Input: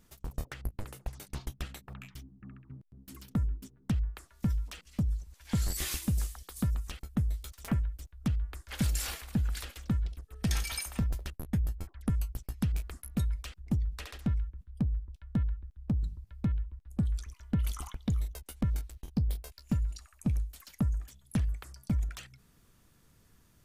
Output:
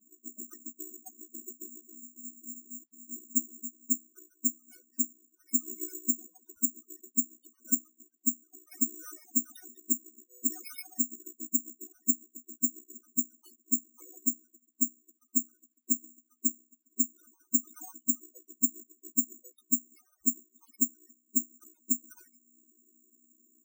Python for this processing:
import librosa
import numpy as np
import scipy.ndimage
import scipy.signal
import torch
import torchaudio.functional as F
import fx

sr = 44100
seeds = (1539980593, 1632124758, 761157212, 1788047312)

y = fx.chord_vocoder(x, sr, chord='major triad', root=59)
y = (np.kron(y[::6], np.eye(6)[0]) * 6)[:len(y)]
y = fx.spec_topn(y, sr, count=16)
y = F.gain(torch.from_numpy(y), -1.5).numpy()